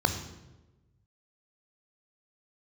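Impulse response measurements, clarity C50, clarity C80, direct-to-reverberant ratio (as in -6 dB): 9.5 dB, 11.0 dB, 6.5 dB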